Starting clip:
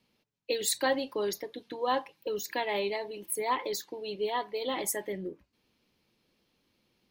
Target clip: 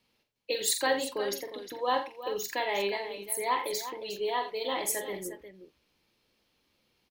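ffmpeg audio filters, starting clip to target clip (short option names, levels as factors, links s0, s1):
-filter_complex "[0:a]equalizer=f=190:t=o:w=2.2:g=-6,asplit=2[s0][s1];[s1]aecho=0:1:45|85|358:0.422|0.224|0.266[s2];[s0][s2]amix=inputs=2:normalize=0,volume=1.12"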